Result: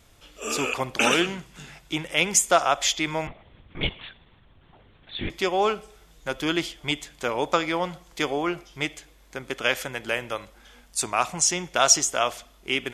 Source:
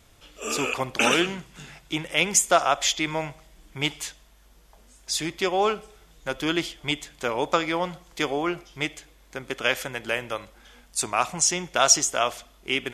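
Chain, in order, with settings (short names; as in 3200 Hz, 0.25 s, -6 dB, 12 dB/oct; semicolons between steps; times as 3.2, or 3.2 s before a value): 3.27–5.3 LPC vocoder at 8 kHz whisper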